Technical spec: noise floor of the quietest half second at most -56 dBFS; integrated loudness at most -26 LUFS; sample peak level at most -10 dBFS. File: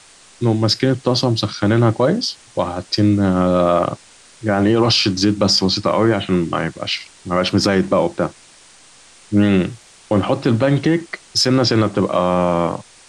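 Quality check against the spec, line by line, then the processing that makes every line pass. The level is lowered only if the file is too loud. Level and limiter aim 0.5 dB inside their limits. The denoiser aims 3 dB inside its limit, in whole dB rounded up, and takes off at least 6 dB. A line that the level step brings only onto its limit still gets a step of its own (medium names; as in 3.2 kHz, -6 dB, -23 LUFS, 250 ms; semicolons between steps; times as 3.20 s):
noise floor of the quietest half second -46 dBFS: fail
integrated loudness -17.5 LUFS: fail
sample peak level -5.5 dBFS: fail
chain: noise reduction 6 dB, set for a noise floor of -46 dBFS; trim -9 dB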